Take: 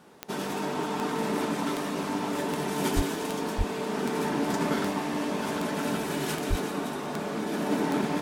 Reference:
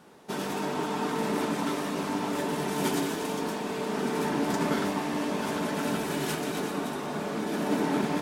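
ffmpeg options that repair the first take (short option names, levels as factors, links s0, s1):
-filter_complex "[0:a]adeclick=t=4,asplit=3[s0][s1][s2];[s0]afade=t=out:st=2.95:d=0.02[s3];[s1]highpass=f=140:w=0.5412,highpass=f=140:w=1.3066,afade=t=in:st=2.95:d=0.02,afade=t=out:st=3.07:d=0.02[s4];[s2]afade=t=in:st=3.07:d=0.02[s5];[s3][s4][s5]amix=inputs=3:normalize=0,asplit=3[s6][s7][s8];[s6]afade=t=out:st=3.57:d=0.02[s9];[s7]highpass=f=140:w=0.5412,highpass=f=140:w=1.3066,afade=t=in:st=3.57:d=0.02,afade=t=out:st=3.69:d=0.02[s10];[s8]afade=t=in:st=3.69:d=0.02[s11];[s9][s10][s11]amix=inputs=3:normalize=0,asplit=3[s12][s13][s14];[s12]afade=t=out:st=6.49:d=0.02[s15];[s13]highpass=f=140:w=0.5412,highpass=f=140:w=1.3066,afade=t=in:st=6.49:d=0.02,afade=t=out:st=6.61:d=0.02[s16];[s14]afade=t=in:st=6.61:d=0.02[s17];[s15][s16][s17]amix=inputs=3:normalize=0"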